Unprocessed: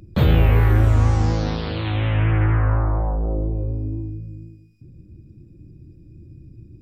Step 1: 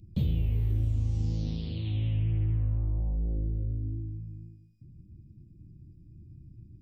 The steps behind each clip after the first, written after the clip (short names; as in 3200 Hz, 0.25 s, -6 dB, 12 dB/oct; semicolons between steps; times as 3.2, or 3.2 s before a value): EQ curve 200 Hz 0 dB, 1500 Hz -29 dB, 2900 Hz -6 dB; compressor, threshold -17 dBFS, peak gain reduction 7 dB; gain -6.5 dB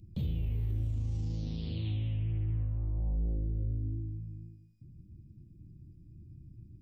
limiter -24.5 dBFS, peak gain reduction 6 dB; gain -1.5 dB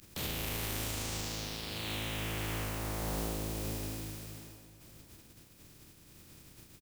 spectral contrast lowered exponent 0.31; feedback echo 0.649 s, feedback 40%, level -17 dB; gain -5 dB